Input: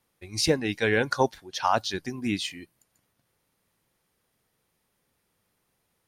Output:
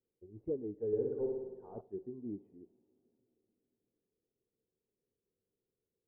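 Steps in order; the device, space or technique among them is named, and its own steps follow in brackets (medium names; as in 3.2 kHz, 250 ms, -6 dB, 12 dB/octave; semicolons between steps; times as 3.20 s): overdriven synthesiser ladder filter (saturation -19.5 dBFS, distortion -11 dB; four-pole ladder low-pass 470 Hz, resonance 65%); 0.87–1.81 s: flutter echo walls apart 10.1 m, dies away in 1.1 s; two-slope reverb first 0.53 s, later 4.1 s, from -18 dB, DRR 15.5 dB; trim -5.5 dB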